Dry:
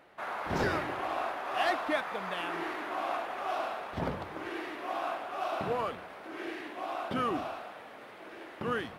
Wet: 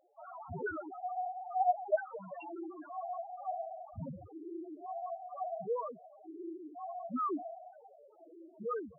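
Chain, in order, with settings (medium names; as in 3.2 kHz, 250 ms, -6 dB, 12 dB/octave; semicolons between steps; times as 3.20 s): 0.90–2.05 s: formants replaced by sine waves; loudest bins only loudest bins 2; trim +1 dB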